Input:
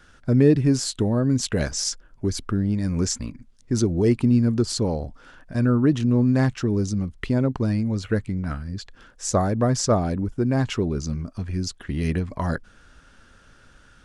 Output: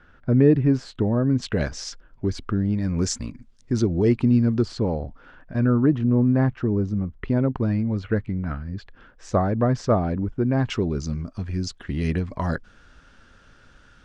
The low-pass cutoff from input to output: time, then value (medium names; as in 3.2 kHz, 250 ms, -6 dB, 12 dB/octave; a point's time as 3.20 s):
2.2 kHz
from 1.42 s 3.7 kHz
from 3.01 s 7.9 kHz
from 3.72 s 4.3 kHz
from 4.68 s 2.6 kHz
from 5.86 s 1.6 kHz
from 7.28 s 2.6 kHz
from 10.70 s 6.1 kHz